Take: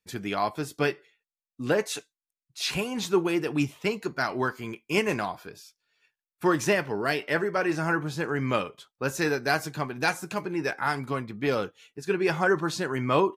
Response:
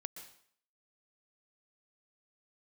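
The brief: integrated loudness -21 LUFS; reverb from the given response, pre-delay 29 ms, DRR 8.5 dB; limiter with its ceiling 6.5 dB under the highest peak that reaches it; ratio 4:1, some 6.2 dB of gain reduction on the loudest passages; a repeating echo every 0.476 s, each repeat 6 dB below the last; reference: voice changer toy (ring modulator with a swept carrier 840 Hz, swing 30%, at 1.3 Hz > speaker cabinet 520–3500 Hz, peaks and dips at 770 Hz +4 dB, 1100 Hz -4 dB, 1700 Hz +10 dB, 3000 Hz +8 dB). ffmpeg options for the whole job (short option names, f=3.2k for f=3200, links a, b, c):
-filter_complex "[0:a]acompressor=threshold=-25dB:ratio=4,alimiter=limit=-20dB:level=0:latency=1,aecho=1:1:476|952|1428|1904|2380|2856:0.501|0.251|0.125|0.0626|0.0313|0.0157,asplit=2[a][b];[1:a]atrim=start_sample=2205,adelay=29[c];[b][c]afir=irnorm=-1:irlink=0,volume=-5.5dB[d];[a][d]amix=inputs=2:normalize=0,aeval=exprs='val(0)*sin(2*PI*840*n/s+840*0.3/1.3*sin(2*PI*1.3*n/s))':c=same,highpass=520,equalizer=f=770:t=q:w=4:g=4,equalizer=f=1.1k:t=q:w=4:g=-4,equalizer=f=1.7k:t=q:w=4:g=10,equalizer=f=3k:t=q:w=4:g=8,lowpass=f=3.5k:w=0.5412,lowpass=f=3.5k:w=1.3066,volume=10.5dB"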